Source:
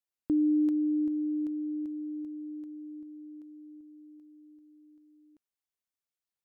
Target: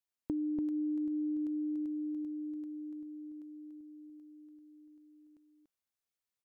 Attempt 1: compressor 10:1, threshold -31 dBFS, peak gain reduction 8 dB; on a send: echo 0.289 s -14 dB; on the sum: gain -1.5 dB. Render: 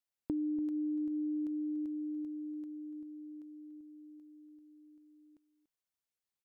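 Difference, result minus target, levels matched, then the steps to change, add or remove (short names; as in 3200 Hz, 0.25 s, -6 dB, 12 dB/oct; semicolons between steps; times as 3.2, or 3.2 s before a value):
echo-to-direct -9.5 dB
change: echo 0.289 s -4.5 dB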